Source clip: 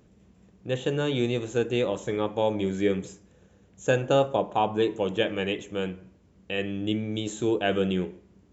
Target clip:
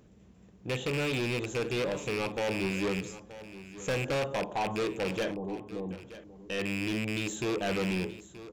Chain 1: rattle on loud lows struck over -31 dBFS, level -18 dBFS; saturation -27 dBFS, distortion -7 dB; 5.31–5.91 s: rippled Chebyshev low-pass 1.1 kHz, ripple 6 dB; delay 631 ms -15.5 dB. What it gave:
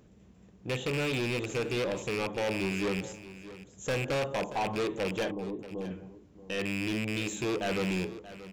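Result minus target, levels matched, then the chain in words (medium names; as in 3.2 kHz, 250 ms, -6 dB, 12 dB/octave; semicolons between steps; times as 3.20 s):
echo 296 ms early
rattle on loud lows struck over -31 dBFS, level -18 dBFS; saturation -27 dBFS, distortion -7 dB; 5.31–5.91 s: rippled Chebyshev low-pass 1.1 kHz, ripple 6 dB; delay 927 ms -15.5 dB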